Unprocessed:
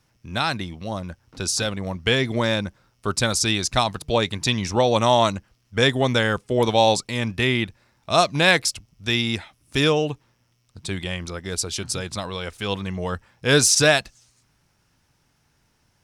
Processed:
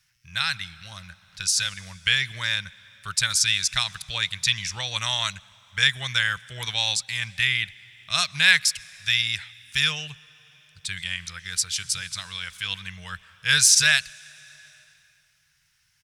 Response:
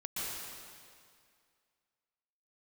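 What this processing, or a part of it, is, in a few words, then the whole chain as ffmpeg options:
compressed reverb return: -filter_complex "[0:a]asplit=2[link_01][link_02];[1:a]atrim=start_sample=2205[link_03];[link_02][link_03]afir=irnorm=-1:irlink=0,acompressor=threshold=-26dB:ratio=4,volume=-16.5dB[link_04];[link_01][link_04]amix=inputs=2:normalize=0,firequalizer=gain_entry='entry(160,0);entry(250,-22);entry(1600,12)':delay=0.05:min_phase=1,volume=-10.5dB"

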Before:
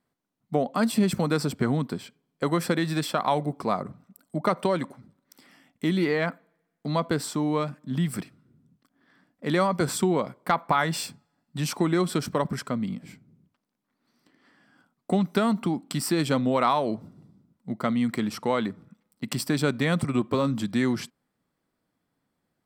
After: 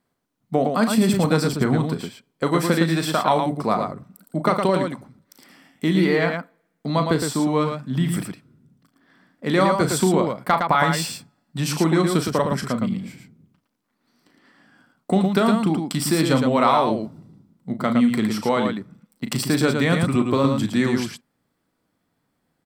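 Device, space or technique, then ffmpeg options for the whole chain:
slapback doubling: -filter_complex "[0:a]asplit=3[link_01][link_02][link_03];[link_02]adelay=37,volume=-9dB[link_04];[link_03]adelay=112,volume=-5dB[link_05];[link_01][link_04][link_05]amix=inputs=3:normalize=0,volume=4dB"

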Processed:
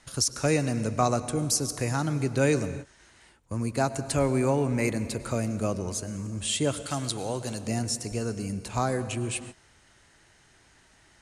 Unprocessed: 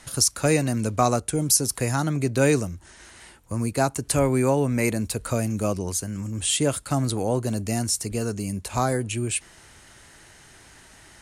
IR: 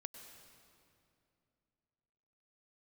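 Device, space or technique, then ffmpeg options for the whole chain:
keyed gated reverb: -filter_complex "[0:a]asplit=3[link_01][link_02][link_03];[1:a]atrim=start_sample=2205[link_04];[link_02][link_04]afir=irnorm=-1:irlink=0[link_05];[link_03]apad=whole_len=494393[link_06];[link_05][link_06]sidechaingate=range=-33dB:threshold=-40dB:ratio=16:detection=peak,volume=4dB[link_07];[link_01][link_07]amix=inputs=2:normalize=0,lowpass=8200,asettb=1/sr,asplit=3[link_08][link_09][link_10];[link_08]atrim=end=6.864[link_11];[link_09]atrim=start=6.86:end=7.67,asetpts=PTS-STARTPTS,afade=type=in:duration=0.004:curve=qsin,afade=type=out:start_time=0.806:duration=0.004:curve=qsin,tiltshelf=frequency=1100:gain=-6[link_12];[link_10]atrim=start=7.666[link_13];[link_11][link_12]acrossfade=duration=0.004:curve1=hsin:curve2=qsin[link_14];[link_14][link_13]acrossfade=duration=0.004:curve1=qsin:curve2=hsin,volume=-9dB"

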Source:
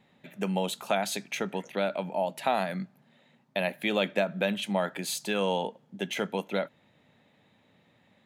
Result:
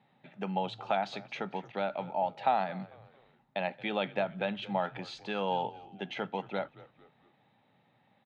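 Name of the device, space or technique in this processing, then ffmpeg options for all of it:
frequency-shifting delay pedal into a guitar cabinet: -filter_complex "[0:a]asplit=4[link_01][link_02][link_03][link_04];[link_02]adelay=224,afreqshift=-75,volume=-19dB[link_05];[link_03]adelay=448,afreqshift=-150,volume=-26.1dB[link_06];[link_04]adelay=672,afreqshift=-225,volume=-33.3dB[link_07];[link_01][link_05][link_06][link_07]amix=inputs=4:normalize=0,highpass=91,equalizer=frequency=130:width_type=q:width=4:gain=7,equalizer=frequency=810:width_type=q:width=4:gain=10,equalizer=frequency=1300:width_type=q:width=4:gain=4,lowpass=frequency=4400:width=0.5412,lowpass=frequency=4400:width=1.3066,volume=-6.5dB"

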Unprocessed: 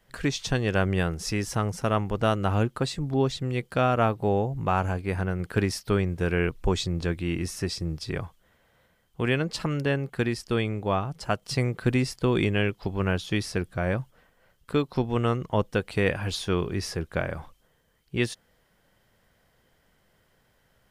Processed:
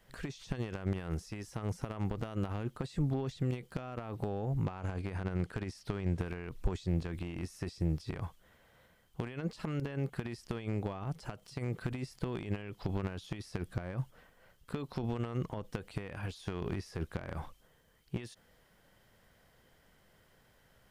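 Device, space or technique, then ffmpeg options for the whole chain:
de-esser from a sidechain: -filter_complex "[0:a]asettb=1/sr,asplit=3[link_01][link_02][link_03];[link_01]atrim=end=4.654[link_04];[link_02]atrim=start=4.65:end=6.25,asetpts=PTS-STARTPTS,afade=type=in:duration=0.004:curve=qsin,afade=type=out:start_time=1.596:duration=0.004:curve=qsin,lowpass=9300[link_05];[link_03]atrim=start=6.246[link_06];[link_04][link_05]acrossfade=duration=0.004:curve1=hsin:curve2=qsin[link_07];[link_07][link_06]acrossfade=duration=0.004:curve1=qsin:curve2=hsin,asplit=2[link_08][link_09];[link_09]highpass=frequency=4800:poles=1,apad=whole_len=922082[link_10];[link_08][link_10]sidechaincompress=threshold=-51dB:ratio=20:attack=0.83:release=34"

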